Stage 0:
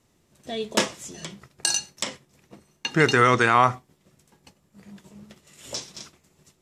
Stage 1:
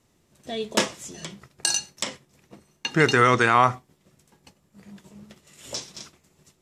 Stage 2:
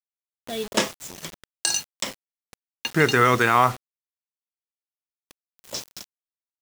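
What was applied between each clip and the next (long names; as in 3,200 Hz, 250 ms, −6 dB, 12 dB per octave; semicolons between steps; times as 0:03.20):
no processing that can be heard
bit reduction 6 bits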